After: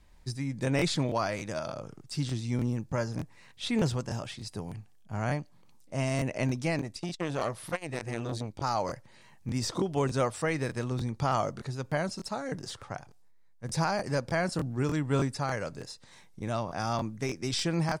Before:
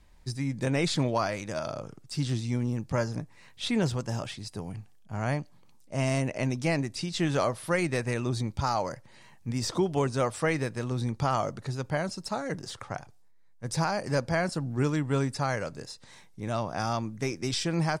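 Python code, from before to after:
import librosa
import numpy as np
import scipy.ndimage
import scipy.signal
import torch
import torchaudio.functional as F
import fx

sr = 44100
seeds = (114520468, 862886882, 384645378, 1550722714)

y = fx.tremolo_shape(x, sr, shape='triangle', hz=1.6, depth_pct=30)
y = fx.buffer_crackle(y, sr, first_s=0.77, period_s=0.3, block=1024, kind='repeat')
y = fx.transformer_sat(y, sr, knee_hz=830.0, at=(6.81, 8.62))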